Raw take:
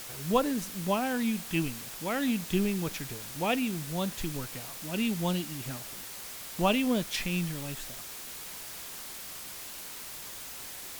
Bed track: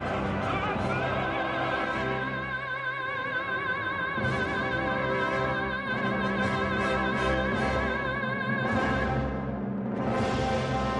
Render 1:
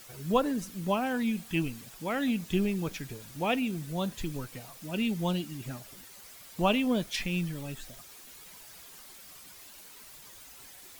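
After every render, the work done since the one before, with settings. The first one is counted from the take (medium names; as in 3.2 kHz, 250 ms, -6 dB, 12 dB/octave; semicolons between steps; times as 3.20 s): noise reduction 10 dB, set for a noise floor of -43 dBFS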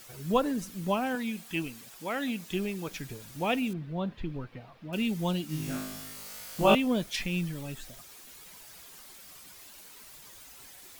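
1.15–2.94 s: bass shelf 180 Hz -12 dB; 3.73–4.93 s: distance through air 360 m; 5.47–6.75 s: flutter echo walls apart 3.3 m, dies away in 1 s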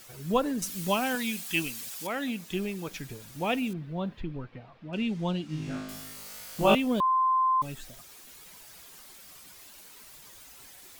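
0.62–2.07 s: treble shelf 2.2 kHz +11.5 dB; 4.21–5.89 s: distance through air 110 m; 7.00–7.62 s: bleep 1.04 kHz -21 dBFS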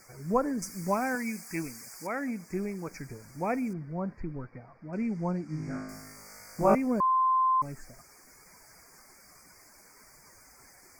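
Chebyshev band-stop 2.3–4.7 kHz, order 4; treble shelf 9.4 kHz -11.5 dB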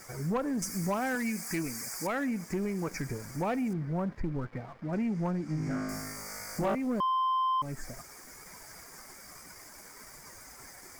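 compression 2.5:1, threshold -37 dBFS, peak gain reduction 13 dB; waveshaping leveller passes 2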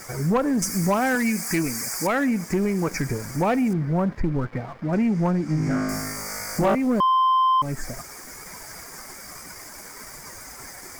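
trim +9.5 dB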